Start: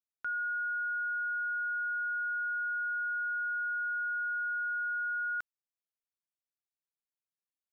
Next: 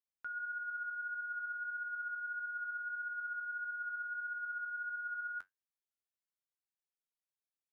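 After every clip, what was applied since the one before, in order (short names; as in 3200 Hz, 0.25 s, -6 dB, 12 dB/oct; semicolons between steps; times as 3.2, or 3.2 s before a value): flange 1.6 Hz, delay 9.1 ms, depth 3.3 ms, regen +58%; gain -2.5 dB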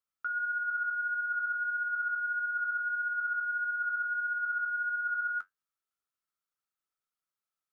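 small resonant body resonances 1300 Hz, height 16 dB, ringing for 20 ms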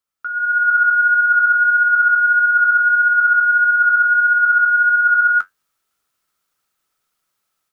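AGC gain up to 12 dB; gain +6.5 dB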